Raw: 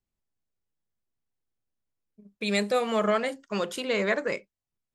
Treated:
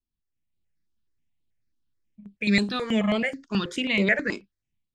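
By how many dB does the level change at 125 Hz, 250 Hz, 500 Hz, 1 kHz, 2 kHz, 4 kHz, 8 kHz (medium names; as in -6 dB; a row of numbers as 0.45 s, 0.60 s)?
no reading, +7.0 dB, -3.5 dB, -4.5 dB, +5.5 dB, +4.0 dB, -3.0 dB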